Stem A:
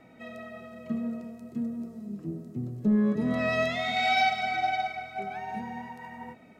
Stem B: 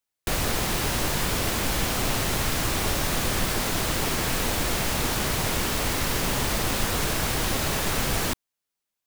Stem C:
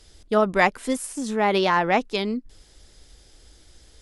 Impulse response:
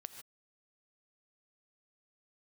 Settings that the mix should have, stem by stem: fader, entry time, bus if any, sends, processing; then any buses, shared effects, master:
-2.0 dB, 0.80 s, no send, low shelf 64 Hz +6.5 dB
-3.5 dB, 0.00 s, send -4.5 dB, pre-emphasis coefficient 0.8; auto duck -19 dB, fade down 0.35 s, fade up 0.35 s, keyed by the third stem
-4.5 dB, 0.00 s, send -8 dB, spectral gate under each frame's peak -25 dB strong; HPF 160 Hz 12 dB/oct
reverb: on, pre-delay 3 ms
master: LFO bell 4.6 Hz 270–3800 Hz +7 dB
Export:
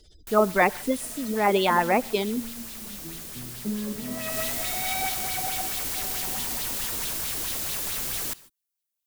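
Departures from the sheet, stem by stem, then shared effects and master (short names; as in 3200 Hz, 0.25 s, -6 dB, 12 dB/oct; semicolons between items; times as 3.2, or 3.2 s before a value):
stem A -2.0 dB -> -9.0 dB; stem C: missing HPF 160 Hz 12 dB/oct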